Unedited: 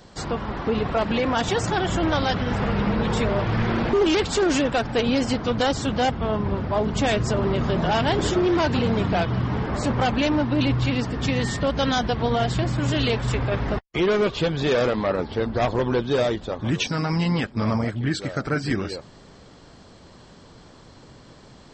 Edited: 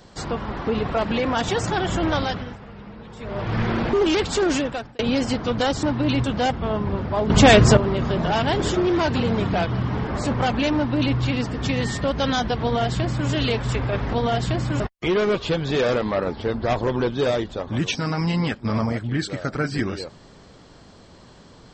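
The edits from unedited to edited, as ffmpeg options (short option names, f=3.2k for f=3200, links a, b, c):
-filter_complex "[0:a]asplit=10[a][b][c][d][e][f][g][h][i][j];[a]atrim=end=2.58,asetpts=PTS-STARTPTS,afade=t=out:st=2.17:d=0.41:silence=0.133352[k];[b]atrim=start=2.58:end=3.18,asetpts=PTS-STARTPTS,volume=-17.5dB[l];[c]atrim=start=3.18:end=4.99,asetpts=PTS-STARTPTS,afade=t=in:d=0.41:silence=0.133352,afade=t=out:st=1.33:d=0.48[m];[d]atrim=start=4.99:end=5.832,asetpts=PTS-STARTPTS,afade=t=in:d=0.004:c=hsin[n];[e]atrim=start=10.348:end=10.762[o];[f]atrim=start=5.828:end=6.892[p];[g]atrim=start=6.888:end=7.362,asetpts=PTS-STARTPTS,volume=10dB[q];[h]atrim=start=7.358:end=13.722[r];[i]atrim=start=12.208:end=12.882[s];[j]atrim=start=13.718[t];[k][l][m][n]concat=n=4:v=0:a=1[u];[u][o]acrossfade=d=0.004:c1=hsin:c2=hsin[v];[v][p]acrossfade=d=0.004:c1=hsin:c2=hsin[w];[w][q]acrossfade=d=0.004:c1=hsin:c2=hsin[x];[x][r]acrossfade=d=0.004:c1=hsin:c2=hsin[y];[y][s]acrossfade=d=0.004:c1=hsin:c2=hsin[z];[z][t]acrossfade=d=0.004:c1=hsin:c2=hsin"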